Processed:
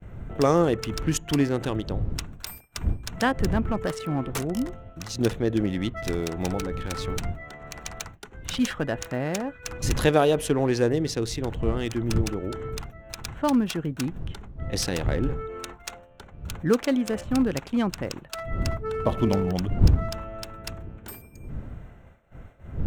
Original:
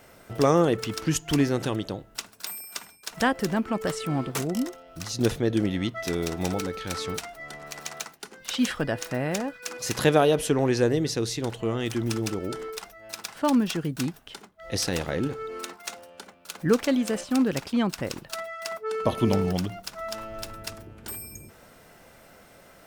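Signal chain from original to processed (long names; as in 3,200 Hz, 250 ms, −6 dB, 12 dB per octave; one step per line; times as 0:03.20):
adaptive Wiener filter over 9 samples
wind on the microphone 100 Hz −32 dBFS
downward expander −41 dBFS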